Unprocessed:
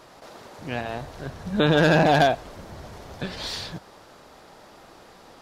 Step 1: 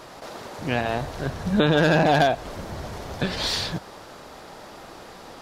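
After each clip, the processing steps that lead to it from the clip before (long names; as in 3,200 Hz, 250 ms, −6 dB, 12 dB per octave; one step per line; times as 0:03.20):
downward compressor 2.5 to 1, threshold −25 dBFS, peak gain reduction 7.5 dB
level +6.5 dB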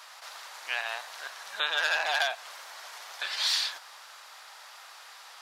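Bessel high-pass filter 1,400 Hz, order 4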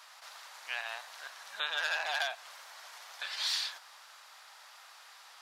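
parametric band 370 Hz −4.5 dB 0.97 octaves
level −5.5 dB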